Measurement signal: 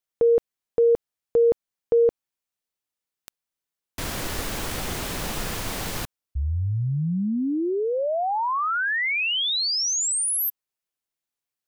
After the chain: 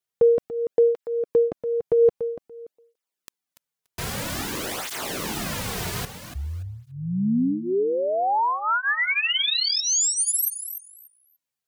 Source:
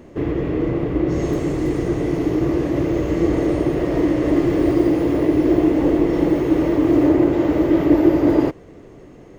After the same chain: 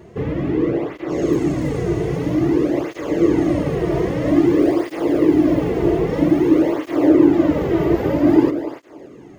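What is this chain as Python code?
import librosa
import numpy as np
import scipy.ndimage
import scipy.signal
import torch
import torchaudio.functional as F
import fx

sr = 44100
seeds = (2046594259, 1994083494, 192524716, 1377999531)

p1 = x + fx.echo_feedback(x, sr, ms=288, feedback_pct=19, wet_db=-10, dry=0)
p2 = fx.flanger_cancel(p1, sr, hz=0.51, depth_ms=3.9)
y = p2 * librosa.db_to_amplitude(3.5)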